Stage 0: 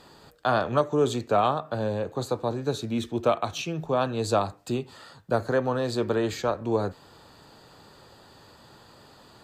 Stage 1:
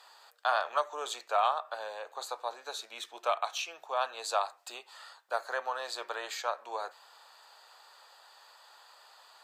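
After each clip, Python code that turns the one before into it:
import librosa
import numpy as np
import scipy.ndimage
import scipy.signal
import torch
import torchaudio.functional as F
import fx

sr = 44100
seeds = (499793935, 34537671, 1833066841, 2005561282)

y = scipy.signal.sosfilt(scipy.signal.butter(4, 720.0, 'highpass', fs=sr, output='sos'), x)
y = F.gain(torch.from_numpy(y), -2.0).numpy()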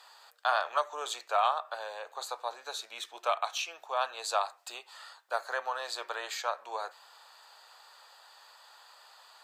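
y = fx.low_shelf(x, sr, hz=330.0, db=-8.5)
y = F.gain(torch.from_numpy(y), 1.5).numpy()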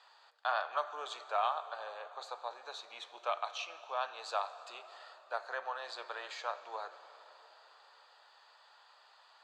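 y = scipy.signal.sosfilt(scipy.signal.butter(2, 4500.0, 'lowpass', fs=sr, output='sos'), x)
y = fx.rev_plate(y, sr, seeds[0], rt60_s=4.0, hf_ratio=0.75, predelay_ms=0, drr_db=12.0)
y = F.gain(torch.from_numpy(y), -5.5).numpy()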